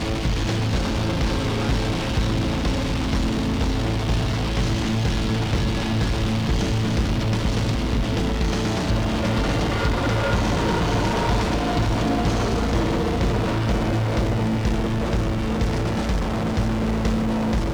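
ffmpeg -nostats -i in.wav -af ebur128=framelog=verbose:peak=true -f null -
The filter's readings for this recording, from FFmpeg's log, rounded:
Integrated loudness:
  I:         -22.8 LUFS
  Threshold: -32.8 LUFS
Loudness range:
  LRA:         1.5 LU
  Threshold: -42.7 LUFS
  LRA low:   -23.3 LUFS
  LRA high:  -21.8 LUFS
True peak:
  Peak:      -10.7 dBFS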